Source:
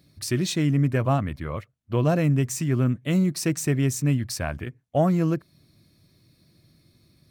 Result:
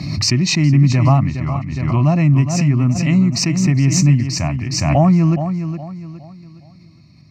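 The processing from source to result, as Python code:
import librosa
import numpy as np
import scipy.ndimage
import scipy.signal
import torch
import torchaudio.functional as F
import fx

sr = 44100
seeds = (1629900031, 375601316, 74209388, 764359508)

p1 = scipy.signal.sosfilt(scipy.signal.butter(2, 5500.0, 'lowpass', fs=sr, output='sos'), x)
p2 = fx.low_shelf(p1, sr, hz=280.0, db=5.5)
p3 = fx.fixed_phaser(p2, sr, hz=2300.0, stages=8)
p4 = p3 + fx.echo_feedback(p3, sr, ms=414, feedback_pct=34, wet_db=-9.5, dry=0)
p5 = fx.rider(p4, sr, range_db=3, speed_s=2.0)
p6 = scipy.signal.sosfilt(scipy.signal.butter(2, 110.0, 'highpass', fs=sr, output='sos'), p5)
p7 = fx.pre_swell(p6, sr, db_per_s=39.0)
y = p7 * 10.0 ** (7.0 / 20.0)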